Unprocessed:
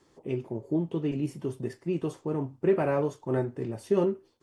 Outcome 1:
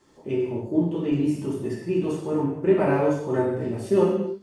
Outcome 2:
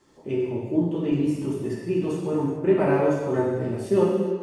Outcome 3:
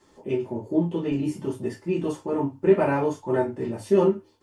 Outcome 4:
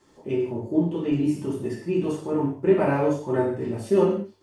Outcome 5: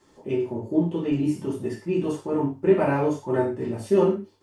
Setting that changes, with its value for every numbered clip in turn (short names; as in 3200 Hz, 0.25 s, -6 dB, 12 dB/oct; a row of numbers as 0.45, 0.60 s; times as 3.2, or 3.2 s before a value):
non-linear reverb, gate: 310, 470, 80, 210, 140 ms